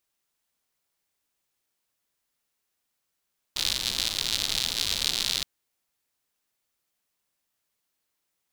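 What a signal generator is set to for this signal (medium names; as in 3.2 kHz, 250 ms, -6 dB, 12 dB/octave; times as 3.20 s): rain from filtered ticks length 1.87 s, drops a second 120, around 3.9 kHz, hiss -12 dB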